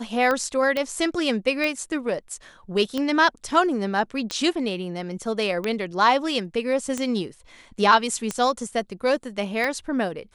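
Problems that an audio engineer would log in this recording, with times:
tick 45 rpm -12 dBFS
0.77 s: pop -13 dBFS

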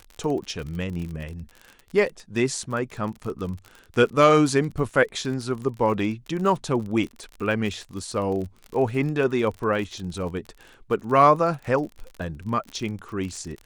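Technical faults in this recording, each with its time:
crackle 42 per s -31 dBFS

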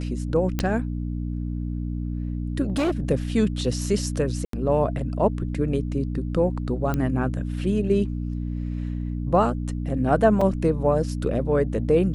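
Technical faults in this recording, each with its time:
hum 60 Hz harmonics 5 -28 dBFS
0.59 s: pop -11 dBFS
2.63–3.11 s: clipped -19 dBFS
4.45–4.53 s: dropout 83 ms
6.94 s: pop -13 dBFS
10.41 s: dropout 4 ms

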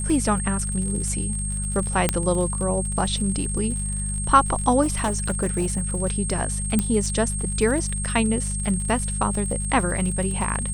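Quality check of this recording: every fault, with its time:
crackle 68 per s -30 dBFS
hum 50 Hz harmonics 4 -28 dBFS
whine 8.5 kHz -29 dBFS
2.09 s: pop -4 dBFS
4.82–5.98 s: clipped -18 dBFS
6.79 s: pop -8 dBFS

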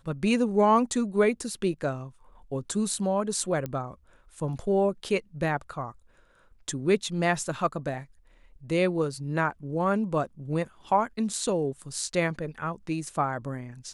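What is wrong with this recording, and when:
3.66 s: pop -20 dBFS

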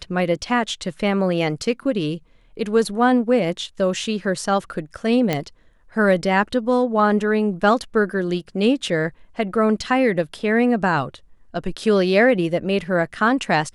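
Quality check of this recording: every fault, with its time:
5.33 s: pop -7 dBFS

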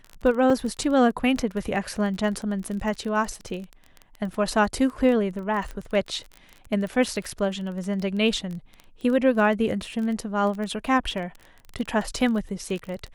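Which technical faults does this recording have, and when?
crackle 20 per s -30 dBFS
0.50 s: dropout 2.7 ms
5.71 s: pop -23 dBFS

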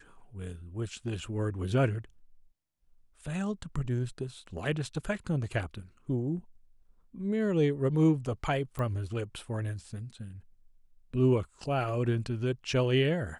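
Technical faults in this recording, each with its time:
8.79 s: pop -23 dBFS

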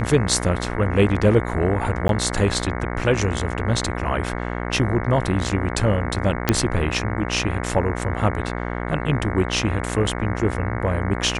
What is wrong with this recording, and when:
buzz 60 Hz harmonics 37 -27 dBFS
2.08–2.09 s: dropout 12 ms
6.49 s: pop -2 dBFS

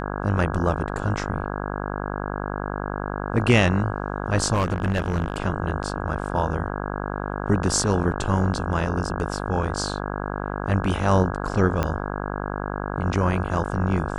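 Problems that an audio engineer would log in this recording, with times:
buzz 50 Hz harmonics 33 -29 dBFS
4.53–5.36 s: clipped -17.5 dBFS
11.83 s: pop -10 dBFS

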